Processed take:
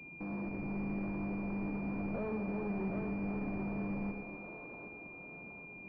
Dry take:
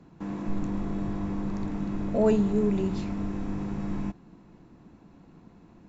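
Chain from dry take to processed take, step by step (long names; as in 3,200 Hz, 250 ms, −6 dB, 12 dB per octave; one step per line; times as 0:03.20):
low-shelf EQ 140 Hz −8.5 dB
tube saturation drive 38 dB, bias 0.45
on a send: echo with a time of its own for lows and highs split 370 Hz, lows 114 ms, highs 766 ms, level −5 dB
on the sum: switching amplifier with a slow clock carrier 2,400 Hz
level +1 dB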